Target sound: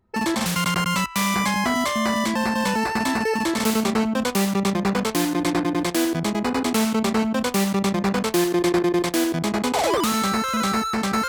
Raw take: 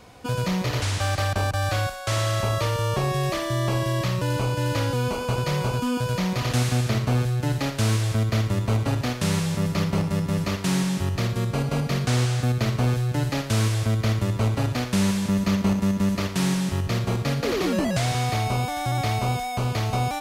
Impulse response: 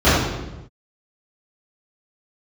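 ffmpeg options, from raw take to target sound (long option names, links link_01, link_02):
-af "lowshelf=frequency=120:gain=-7,anlmdn=25.1,asetrate=78939,aresample=44100,volume=4dB"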